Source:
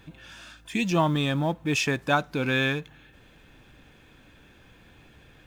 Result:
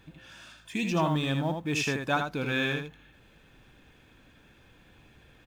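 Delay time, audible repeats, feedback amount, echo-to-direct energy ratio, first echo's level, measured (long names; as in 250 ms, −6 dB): 80 ms, 1, repeats not evenly spaced, −5.5 dB, −5.5 dB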